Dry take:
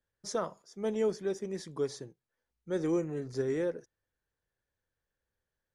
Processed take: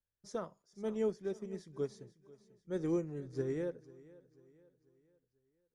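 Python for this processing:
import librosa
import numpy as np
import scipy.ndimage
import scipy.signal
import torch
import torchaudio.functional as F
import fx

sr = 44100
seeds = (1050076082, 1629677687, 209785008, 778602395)

y = fx.low_shelf(x, sr, hz=250.0, db=9.0)
y = fx.echo_feedback(y, sr, ms=492, feedback_pct=44, wet_db=-15.5)
y = fx.upward_expand(y, sr, threshold_db=-39.0, expansion=1.5)
y = F.gain(torch.from_numpy(y), -6.0).numpy()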